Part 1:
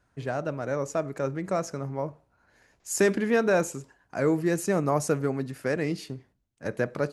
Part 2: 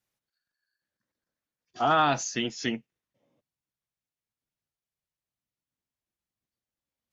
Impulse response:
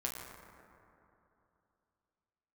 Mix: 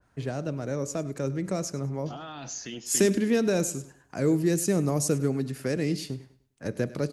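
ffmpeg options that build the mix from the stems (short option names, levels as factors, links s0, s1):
-filter_complex "[0:a]volume=1.41,asplit=2[s0][s1];[s1]volume=0.126[s2];[1:a]alimiter=limit=0.0708:level=0:latency=1:release=56,adelay=300,volume=0.708,asplit=2[s3][s4];[s4]volume=0.106[s5];[s2][s5]amix=inputs=2:normalize=0,aecho=0:1:101|202|303|404:1|0.3|0.09|0.027[s6];[s0][s3][s6]amix=inputs=3:normalize=0,acrossover=split=440|3000[s7][s8][s9];[s8]acompressor=threshold=0.00398:ratio=2[s10];[s7][s10][s9]amix=inputs=3:normalize=0,adynamicequalizer=threshold=0.0141:dfrequency=1900:dqfactor=0.7:tfrequency=1900:tqfactor=0.7:attack=5:release=100:ratio=0.375:range=1.5:mode=boostabove:tftype=highshelf"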